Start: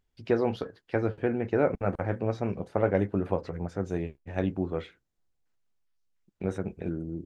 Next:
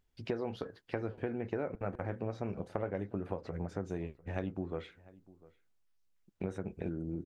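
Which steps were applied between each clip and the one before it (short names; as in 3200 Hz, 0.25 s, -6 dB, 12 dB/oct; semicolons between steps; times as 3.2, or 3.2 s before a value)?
compressor, threshold -33 dBFS, peak gain reduction 13.5 dB; outdoor echo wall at 120 m, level -21 dB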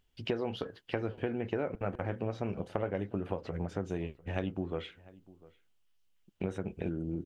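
bell 3000 Hz +9.5 dB 0.4 oct; gain +2.5 dB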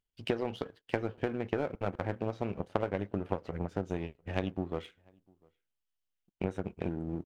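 speakerphone echo 0.11 s, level -25 dB; power-law curve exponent 1.4; gain +5.5 dB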